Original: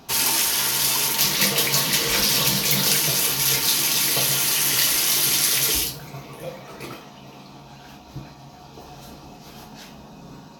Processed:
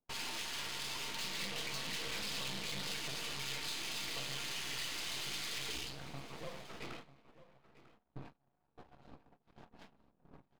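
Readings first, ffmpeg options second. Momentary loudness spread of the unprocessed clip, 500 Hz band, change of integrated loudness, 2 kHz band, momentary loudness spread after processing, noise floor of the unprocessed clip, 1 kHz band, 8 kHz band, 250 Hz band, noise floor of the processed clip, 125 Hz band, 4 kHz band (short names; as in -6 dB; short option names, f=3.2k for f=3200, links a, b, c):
19 LU, -17.5 dB, -22.0 dB, -16.0 dB, 10 LU, -44 dBFS, -17.0 dB, -25.5 dB, -18.0 dB, -79 dBFS, -18.5 dB, -18.5 dB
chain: -filter_complex "[0:a]bandreject=f=50:t=h:w=6,bandreject=f=100:t=h:w=6,bandreject=f=150:t=h:w=6,anlmdn=0.0631,agate=range=-29dB:threshold=-39dB:ratio=16:detection=peak,aemphasis=mode=reproduction:type=50fm,bandreject=f=5.7k:w=5.8,acompressor=threshold=-35dB:ratio=2,asoftclip=type=tanh:threshold=-29.5dB,adynamicsmooth=sensitivity=6:basefreq=4.1k,aeval=exprs='max(val(0),0)':c=same,asplit=2[a][b];[b]aecho=0:1:946:0.158[c];[a][c]amix=inputs=2:normalize=0,adynamicequalizer=threshold=0.00158:dfrequency=2000:dqfactor=0.7:tfrequency=2000:tqfactor=0.7:attack=5:release=100:ratio=0.375:range=3.5:mode=boostabove:tftype=highshelf,volume=-4dB"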